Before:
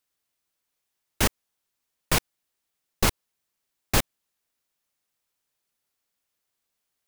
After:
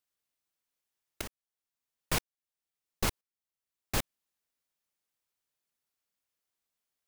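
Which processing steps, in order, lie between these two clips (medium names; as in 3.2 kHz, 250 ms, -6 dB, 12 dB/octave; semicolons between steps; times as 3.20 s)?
1.21–4.00 s: tremolo saw up 1 Hz, depth 85%; trim -7 dB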